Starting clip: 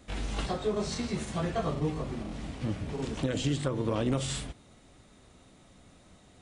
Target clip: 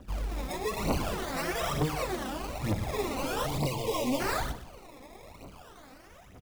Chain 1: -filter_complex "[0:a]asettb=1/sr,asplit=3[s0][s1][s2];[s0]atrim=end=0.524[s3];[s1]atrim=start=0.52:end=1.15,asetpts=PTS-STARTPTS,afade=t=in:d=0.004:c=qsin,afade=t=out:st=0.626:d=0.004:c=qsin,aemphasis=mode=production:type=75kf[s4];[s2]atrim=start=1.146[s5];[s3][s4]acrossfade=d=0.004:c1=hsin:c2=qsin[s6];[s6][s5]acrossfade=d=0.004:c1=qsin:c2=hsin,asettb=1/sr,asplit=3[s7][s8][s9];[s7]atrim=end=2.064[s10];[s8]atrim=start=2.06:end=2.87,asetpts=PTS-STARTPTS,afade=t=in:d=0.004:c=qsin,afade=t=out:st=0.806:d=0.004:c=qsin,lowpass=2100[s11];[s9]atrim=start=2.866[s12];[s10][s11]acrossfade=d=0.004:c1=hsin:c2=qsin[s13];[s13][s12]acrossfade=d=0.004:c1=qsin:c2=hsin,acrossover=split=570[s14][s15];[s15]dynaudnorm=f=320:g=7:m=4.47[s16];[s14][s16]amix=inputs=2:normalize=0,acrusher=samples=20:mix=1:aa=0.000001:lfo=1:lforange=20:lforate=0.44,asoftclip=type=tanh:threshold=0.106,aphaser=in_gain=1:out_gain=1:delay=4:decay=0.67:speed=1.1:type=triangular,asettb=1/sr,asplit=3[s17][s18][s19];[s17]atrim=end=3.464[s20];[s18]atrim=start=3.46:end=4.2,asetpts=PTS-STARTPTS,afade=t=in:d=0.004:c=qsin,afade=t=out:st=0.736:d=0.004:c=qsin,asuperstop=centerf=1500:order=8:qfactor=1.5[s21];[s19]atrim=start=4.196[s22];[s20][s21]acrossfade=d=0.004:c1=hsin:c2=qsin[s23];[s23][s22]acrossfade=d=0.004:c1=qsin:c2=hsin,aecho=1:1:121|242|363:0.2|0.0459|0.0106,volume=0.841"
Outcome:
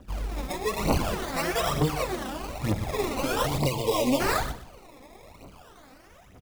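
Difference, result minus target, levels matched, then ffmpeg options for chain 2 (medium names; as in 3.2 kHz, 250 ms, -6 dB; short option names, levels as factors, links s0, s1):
saturation: distortion -8 dB
-filter_complex "[0:a]asettb=1/sr,asplit=3[s0][s1][s2];[s0]atrim=end=0.524[s3];[s1]atrim=start=0.52:end=1.15,asetpts=PTS-STARTPTS,afade=t=in:d=0.004:c=qsin,afade=t=out:st=0.626:d=0.004:c=qsin,aemphasis=mode=production:type=75kf[s4];[s2]atrim=start=1.146[s5];[s3][s4]acrossfade=d=0.004:c1=hsin:c2=qsin[s6];[s6][s5]acrossfade=d=0.004:c1=qsin:c2=hsin,asettb=1/sr,asplit=3[s7][s8][s9];[s7]atrim=end=2.064[s10];[s8]atrim=start=2.06:end=2.87,asetpts=PTS-STARTPTS,afade=t=in:d=0.004:c=qsin,afade=t=out:st=0.806:d=0.004:c=qsin,lowpass=2100[s11];[s9]atrim=start=2.866[s12];[s10][s11]acrossfade=d=0.004:c1=hsin:c2=qsin[s13];[s13][s12]acrossfade=d=0.004:c1=qsin:c2=hsin,acrossover=split=570[s14][s15];[s15]dynaudnorm=f=320:g=7:m=4.47[s16];[s14][s16]amix=inputs=2:normalize=0,acrusher=samples=20:mix=1:aa=0.000001:lfo=1:lforange=20:lforate=0.44,asoftclip=type=tanh:threshold=0.0355,aphaser=in_gain=1:out_gain=1:delay=4:decay=0.67:speed=1.1:type=triangular,asettb=1/sr,asplit=3[s17][s18][s19];[s17]atrim=end=3.464[s20];[s18]atrim=start=3.46:end=4.2,asetpts=PTS-STARTPTS,afade=t=in:d=0.004:c=qsin,afade=t=out:st=0.736:d=0.004:c=qsin,asuperstop=centerf=1500:order=8:qfactor=1.5[s21];[s19]atrim=start=4.196[s22];[s20][s21]acrossfade=d=0.004:c1=hsin:c2=qsin[s23];[s23][s22]acrossfade=d=0.004:c1=qsin:c2=hsin,aecho=1:1:121|242|363:0.2|0.0459|0.0106,volume=0.841"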